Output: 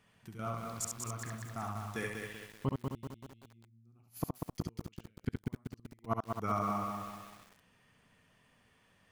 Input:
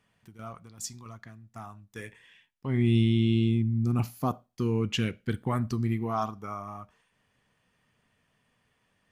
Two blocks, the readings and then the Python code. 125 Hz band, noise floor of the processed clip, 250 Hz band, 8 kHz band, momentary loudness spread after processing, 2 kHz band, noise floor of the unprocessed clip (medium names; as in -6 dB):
-13.5 dB, -69 dBFS, -13.0 dB, +0.5 dB, 15 LU, -4.5 dB, -73 dBFS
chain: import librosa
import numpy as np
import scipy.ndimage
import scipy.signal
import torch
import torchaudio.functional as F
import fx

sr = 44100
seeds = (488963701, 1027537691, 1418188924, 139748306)

y = fx.gate_flip(x, sr, shuts_db=-22.0, range_db=-41)
y = fx.room_early_taps(y, sr, ms=(58, 69), db=(-18.0, -4.0))
y = fx.echo_crushed(y, sr, ms=192, feedback_pct=55, bits=9, wet_db=-4.0)
y = y * 10.0 ** (2.0 / 20.0)